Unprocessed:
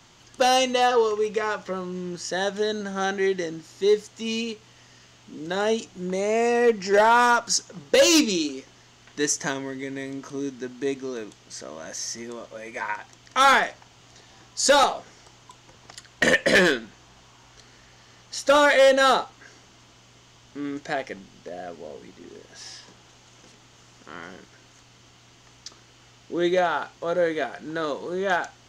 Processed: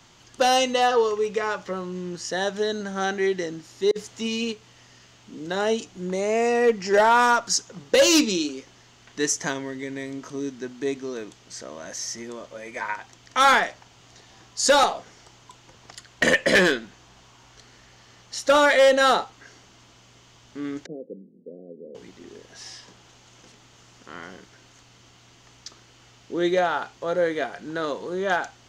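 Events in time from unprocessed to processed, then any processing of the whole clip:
3.91–4.52 negative-ratio compressor -28 dBFS, ratio -0.5
20.86–21.95 Chebyshev band-pass 160–510 Hz, order 4

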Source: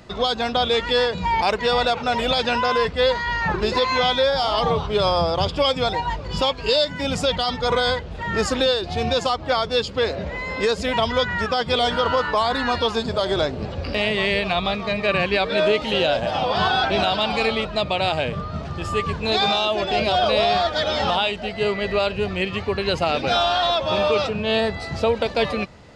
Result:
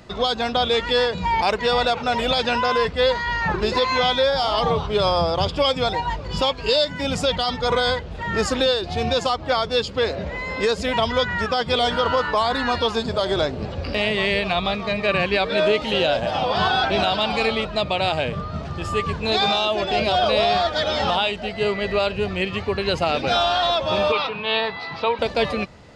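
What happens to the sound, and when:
24.12–25.19 speaker cabinet 220–4400 Hz, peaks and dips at 220 Hz -7 dB, 370 Hz -7 dB, 600 Hz -9 dB, 1000 Hz +10 dB, 2300 Hz +4 dB, 3700 Hz +4 dB

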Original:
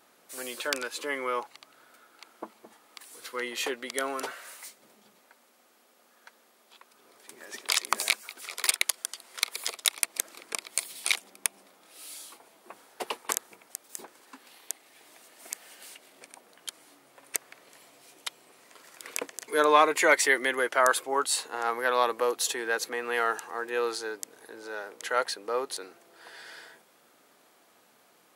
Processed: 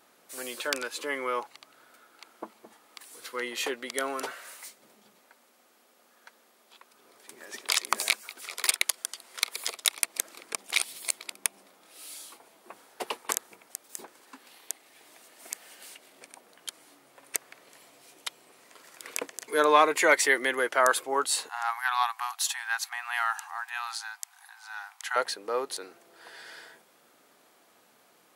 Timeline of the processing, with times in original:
10.56–11.32 reverse
21.49–25.16 brick-wall FIR high-pass 700 Hz

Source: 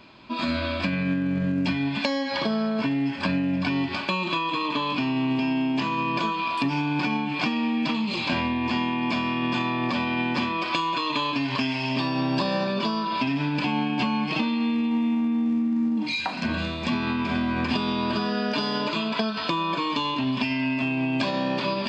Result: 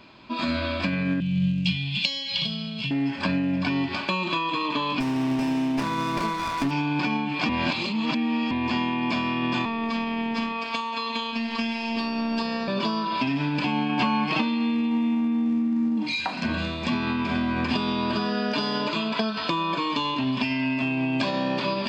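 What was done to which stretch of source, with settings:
1.2–2.91 EQ curve 120 Hz 0 dB, 170 Hz +9 dB, 250 Hz -18 dB, 1700 Hz -16 dB, 2900 Hz +10 dB, 5300 Hz +2 dB
5–6.71 running maximum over 9 samples
7.49–8.51 reverse
9.65–12.68 robotiser 229 Hz
13.89–14.42 bell 1200 Hz +5 dB 1.8 oct

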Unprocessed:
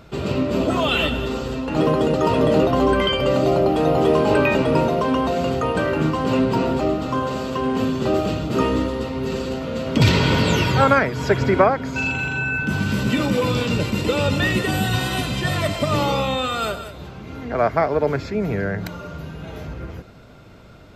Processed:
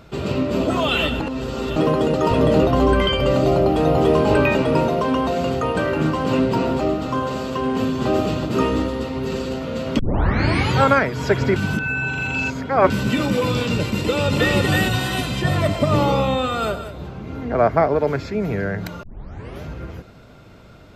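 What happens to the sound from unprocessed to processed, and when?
1.2–1.76 reverse
2.31–4.53 low shelf 79 Hz +11.5 dB
5.7–6.23 echo throw 0.29 s, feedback 45%, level -13 dB
7.61–8.08 echo throw 0.37 s, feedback 50%, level -6.5 dB
9.99 tape start 0.75 s
11.56–12.9 reverse
14–14.56 echo throw 0.32 s, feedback 20%, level -1 dB
15.42–17.96 tilt shelf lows +4 dB, about 1400 Hz
19.03 tape start 0.59 s

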